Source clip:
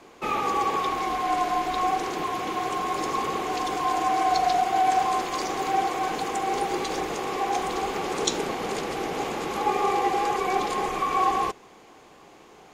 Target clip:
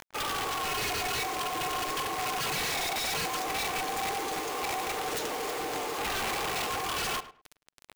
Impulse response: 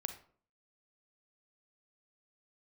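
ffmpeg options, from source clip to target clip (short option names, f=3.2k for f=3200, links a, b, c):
-filter_complex "[0:a]highpass=330,bandreject=f=60:t=h:w=6,bandreject=f=120:t=h:w=6,bandreject=f=180:t=h:w=6,bandreject=f=240:t=h:w=6,bandreject=f=300:t=h:w=6,bandreject=f=360:t=h:w=6,bandreject=f=420:t=h:w=6,aecho=1:1:6.7:0.5,acrossover=split=2600[a][b];[a]acompressor=mode=upward:threshold=-38dB:ratio=2.5[c];[c][b]amix=inputs=2:normalize=0,atempo=1.6,aeval=exprs='(mod(11.2*val(0)+1,2)-1)/11.2':c=same,acrusher=bits=5:mix=0:aa=0.000001,asoftclip=type=tanh:threshold=-29dB,asplit=2[d][e];[e]adelay=105,lowpass=f=2.8k:p=1,volume=-14dB,asplit=2[f][g];[g]adelay=105,lowpass=f=2.8k:p=1,volume=0.2[h];[f][h]amix=inputs=2:normalize=0[i];[d][i]amix=inputs=2:normalize=0"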